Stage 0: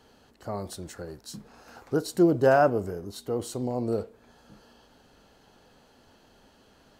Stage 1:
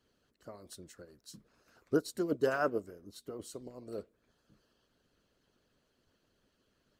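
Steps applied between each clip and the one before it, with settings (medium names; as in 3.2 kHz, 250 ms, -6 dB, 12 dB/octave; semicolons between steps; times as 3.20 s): peaking EQ 820 Hz -15 dB 0.31 oct; harmonic-percussive split harmonic -14 dB; upward expansion 1.5:1, over -45 dBFS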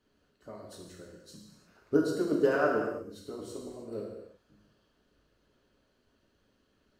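treble shelf 4.7 kHz -7.5 dB; gated-style reverb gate 380 ms falling, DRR -2.5 dB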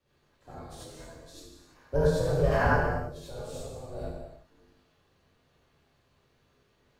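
ring modulator 310 Hz; gated-style reverb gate 110 ms rising, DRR -6.5 dB; frequency shift -170 Hz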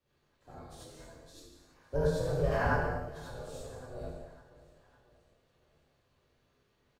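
feedback delay 556 ms, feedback 50%, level -20 dB; trim -5 dB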